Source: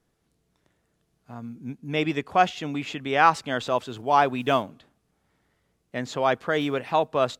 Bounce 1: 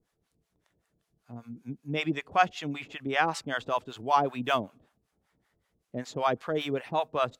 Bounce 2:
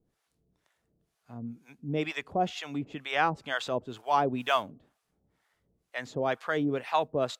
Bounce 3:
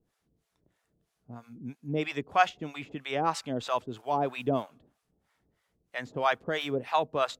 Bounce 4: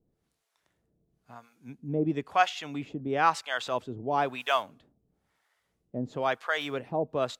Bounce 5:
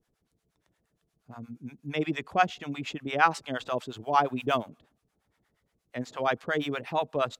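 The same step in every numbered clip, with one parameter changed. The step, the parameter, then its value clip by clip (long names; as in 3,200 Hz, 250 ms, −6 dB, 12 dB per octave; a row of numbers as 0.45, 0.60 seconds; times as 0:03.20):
two-band tremolo in antiphase, speed: 5.2, 2.1, 3.1, 1, 8.5 Hertz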